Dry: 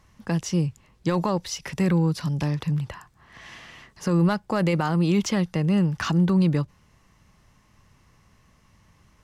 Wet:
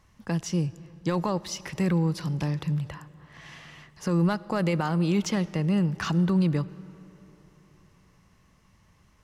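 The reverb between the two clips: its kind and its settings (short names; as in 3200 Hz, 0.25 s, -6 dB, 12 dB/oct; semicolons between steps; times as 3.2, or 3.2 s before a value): digital reverb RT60 3.7 s, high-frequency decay 0.55×, pre-delay 30 ms, DRR 18.5 dB; gain -3 dB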